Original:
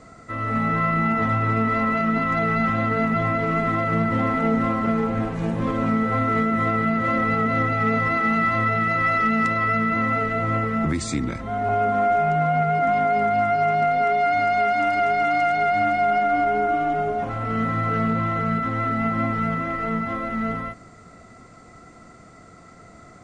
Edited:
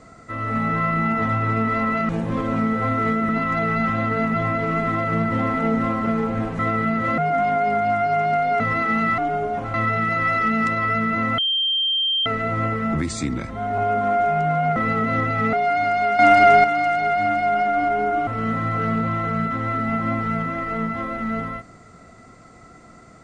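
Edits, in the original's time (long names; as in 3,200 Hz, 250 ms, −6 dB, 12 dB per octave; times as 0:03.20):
0:05.39–0:06.59: move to 0:02.09
0:07.18–0:07.95: swap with 0:12.67–0:14.09
0:10.17: insert tone 3,160 Hz −18 dBFS 0.88 s
0:14.75–0:15.20: clip gain +8.5 dB
0:16.83–0:17.39: move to 0:08.53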